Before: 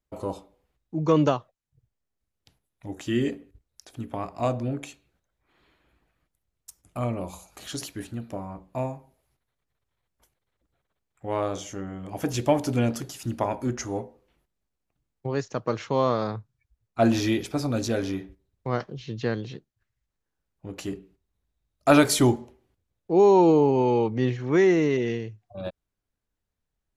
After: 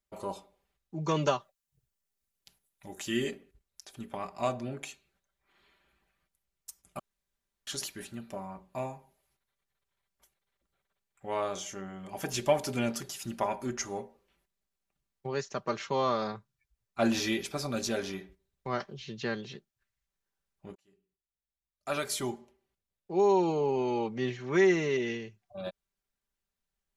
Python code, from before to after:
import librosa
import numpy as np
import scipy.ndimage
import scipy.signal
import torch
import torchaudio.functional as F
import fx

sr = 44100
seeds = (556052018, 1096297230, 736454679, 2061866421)

y = fx.high_shelf(x, sr, hz=6700.0, db=8.5, at=(1.04, 3.31))
y = fx.edit(y, sr, fx.room_tone_fill(start_s=6.99, length_s=0.68),
    fx.fade_in_span(start_s=20.75, length_s=3.9), tone=tone)
y = fx.tilt_shelf(y, sr, db=-4.0, hz=790.0)
y = y + 0.54 * np.pad(y, (int(5.1 * sr / 1000.0), 0))[:len(y)]
y = y * 10.0 ** (-5.0 / 20.0)